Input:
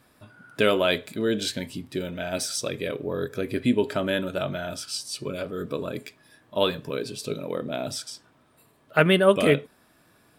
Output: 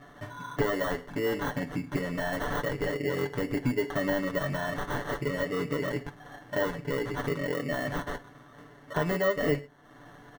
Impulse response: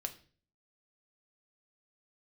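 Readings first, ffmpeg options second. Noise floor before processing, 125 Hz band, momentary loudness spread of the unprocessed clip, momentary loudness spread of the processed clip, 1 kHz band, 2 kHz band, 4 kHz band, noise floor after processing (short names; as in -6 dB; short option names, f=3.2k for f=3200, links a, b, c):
-61 dBFS, -2.0 dB, 12 LU, 7 LU, -2.5 dB, -3.0 dB, -11.5 dB, -53 dBFS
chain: -filter_complex "[0:a]acrusher=samples=18:mix=1:aa=0.000001,equalizer=f=1.8k:t=o:w=0.28:g=9.5,acompressor=threshold=-38dB:ratio=3,highshelf=f=4.6k:g=-10.5,bandreject=f=3.8k:w=20,aecho=1:1:6.9:0.7,asplit=2[a][b];[1:a]atrim=start_sample=2205,asetrate=74970,aresample=44100[c];[b][c]afir=irnorm=-1:irlink=0,volume=-0.5dB[d];[a][d]amix=inputs=2:normalize=0,deesser=1,volume=4dB"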